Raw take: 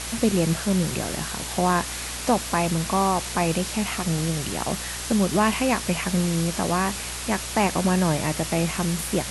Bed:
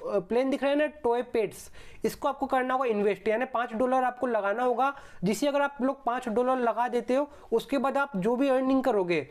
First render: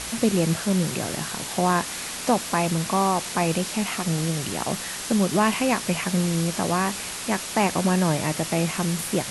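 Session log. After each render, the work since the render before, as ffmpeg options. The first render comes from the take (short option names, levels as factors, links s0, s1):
-af "bandreject=f=60:t=h:w=4,bandreject=f=120:t=h:w=4"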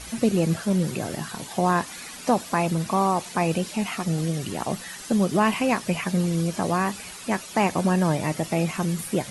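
-af "afftdn=nr=11:nf=-33"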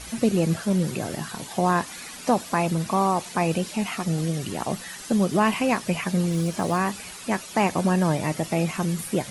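-filter_complex "[0:a]asettb=1/sr,asplit=3[s0][s1][s2];[s0]atrim=end=6.304[s3];[s1]atrim=start=6.3:end=6.77,asetpts=PTS-STARTPTS,afade=t=in:d=0.004:c=qsin,afade=t=out:st=0.466:d=0.004:c=qsin,acrusher=bits=8:mode=log:mix=0:aa=0.000001[s4];[s2]atrim=start=6.766[s5];[s3][s4]acrossfade=d=0.004:c1=hsin:c2=qsin[s6];[s6][s5]acrossfade=d=0.004:c1=qsin:c2=hsin"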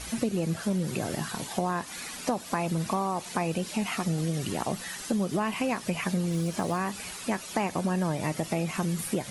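-af "acompressor=threshold=0.0562:ratio=5"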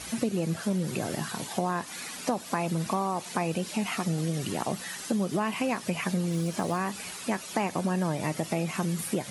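-af "highpass=96"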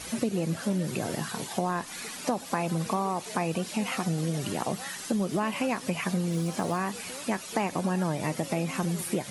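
-filter_complex "[1:a]volume=0.1[s0];[0:a][s0]amix=inputs=2:normalize=0"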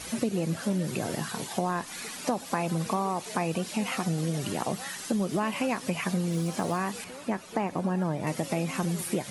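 -filter_complex "[0:a]asettb=1/sr,asplit=3[s0][s1][s2];[s0]atrim=end=7.044[s3];[s1]atrim=start=7.04:end=8.27,asetpts=PTS-STARTPTS,afade=t=in:d=0.004:c=qsin,afade=t=out:st=1.226:d=0.004:c=qsin,highshelf=f=2400:g=-11[s4];[s2]atrim=start=8.266[s5];[s3][s4]acrossfade=d=0.004:c1=hsin:c2=qsin[s6];[s6][s5]acrossfade=d=0.004:c1=qsin:c2=hsin"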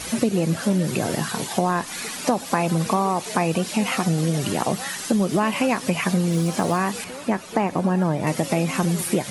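-af "volume=2.37"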